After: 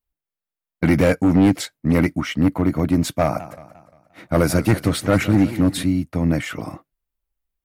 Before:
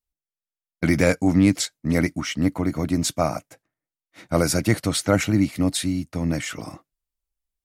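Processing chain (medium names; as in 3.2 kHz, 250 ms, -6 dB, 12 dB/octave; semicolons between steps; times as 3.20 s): hard clipper -14 dBFS, distortion -12 dB; peaking EQ 6.5 kHz -11 dB 1.7 oct; 3.22–5.83 s: modulated delay 175 ms, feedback 48%, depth 166 cents, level -15 dB; trim +5 dB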